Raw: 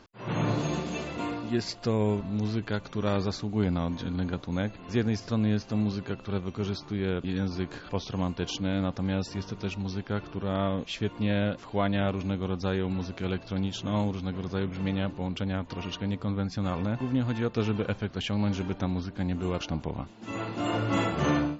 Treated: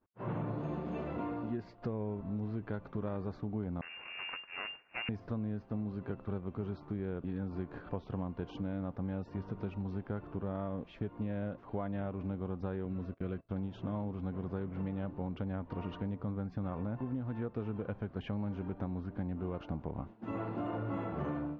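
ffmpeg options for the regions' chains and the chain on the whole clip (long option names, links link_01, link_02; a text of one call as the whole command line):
ffmpeg -i in.wav -filter_complex "[0:a]asettb=1/sr,asplit=3[link_01][link_02][link_03];[link_01]atrim=end=3.814[link_04];[link_02]atrim=start=3.81:end=5.09,asetpts=PTS-STARTPTS,afade=type=in:duration=0.004:curve=qsin,afade=type=out:start_time=1.276:duration=0.004:curve=qsin,aeval=exprs='abs(val(0))':channel_layout=same,lowpass=frequency=2400:width_type=q:width=0.5098,lowpass=frequency=2400:width_type=q:width=0.6013,lowpass=frequency=2400:width_type=q:width=0.9,lowpass=frequency=2400:width_type=q:width=2.563,afreqshift=-2800[link_05];[link_03]atrim=start=5.086[link_06];[link_04][link_05]acrossfade=duration=0.004:curve1=hsin:curve2=qsin[link_07];[link_07][link_06]acrossfade=duration=0.004:curve1=qsin:curve2=hsin,asettb=1/sr,asplit=3[link_08][link_09][link_10];[link_08]atrim=end=12.854[link_11];[link_09]atrim=start=12.85:end=13.49,asetpts=PTS-STARTPTS,afade=type=in:duration=0.004:curve=qsin,afade=type=out:start_time=0.636:duration=0.004:curve=qsin,agate=range=-23dB:threshold=-39dB:ratio=16:release=100:detection=peak,equalizer=frequency=850:width_type=o:width=0.22:gain=-14.5[link_12];[link_10]atrim=start=13.486[link_13];[link_11][link_12]acrossfade=duration=0.004:curve1=hsin:curve2=qsin[link_14];[link_14][link_13]acrossfade=duration=0.004:curve1=qsin:curve2=hsin,lowpass=1300,acompressor=threshold=-34dB:ratio=8,agate=range=-33dB:threshold=-43dB:ratio=3:detection=peak" out.wav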